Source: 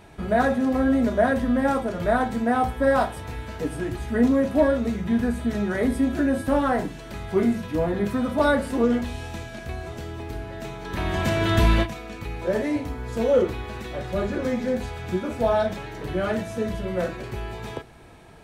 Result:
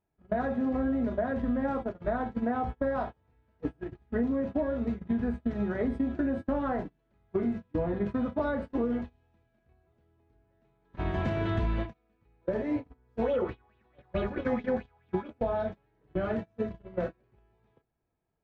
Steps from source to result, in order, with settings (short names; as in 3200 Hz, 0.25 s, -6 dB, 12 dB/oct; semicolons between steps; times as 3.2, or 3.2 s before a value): gate -25 dBFS, range -33 dB; compressor 6:1, threshold -25 dBFS, peak gain reduction 11.5 dB; tape spacing loss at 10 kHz 30 dB; 13.22–15.3 LFO bell 4.6 Hz 790–3500 Hz +14 dB